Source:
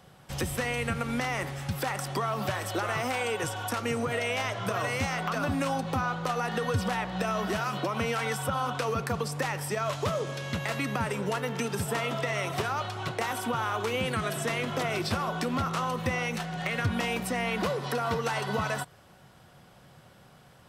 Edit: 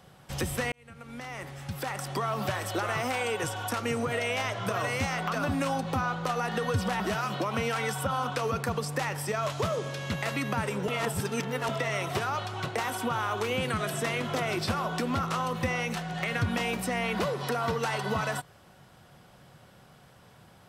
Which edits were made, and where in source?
0:00.72–0:02.33: fade in
0:07.00–0:07.43: remove
0:11.31–0:12.12: reverse

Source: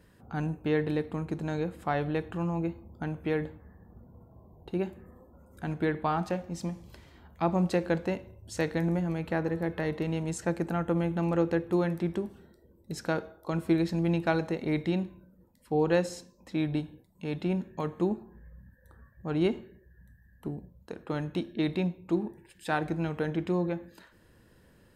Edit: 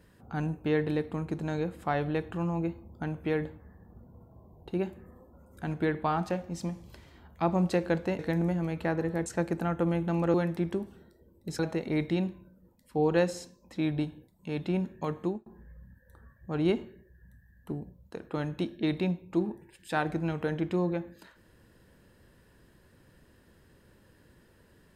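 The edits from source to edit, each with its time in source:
0:08.19–0:08.66: remove
0:09.73–0:10.35: remove
0:11.43–0:11.77: remove
0:13.02–0:14.35: remove
0:17.96–0:18.22: fade out

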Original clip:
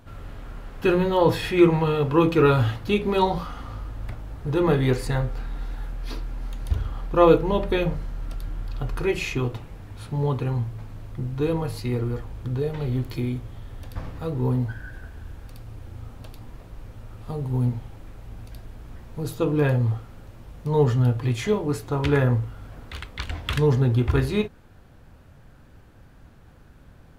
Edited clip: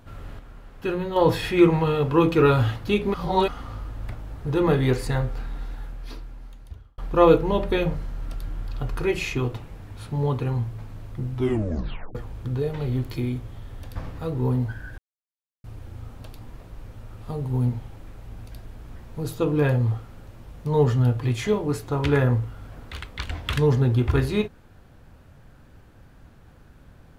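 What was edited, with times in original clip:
0:00.39–0:01.16: clip gain −6.5 dB
0:03.14–0:03.48: reverse
0:05.41–0:06.98: fade out
0:11.32: tape stop 0.83 s
0:14.98–0:15.64: silence

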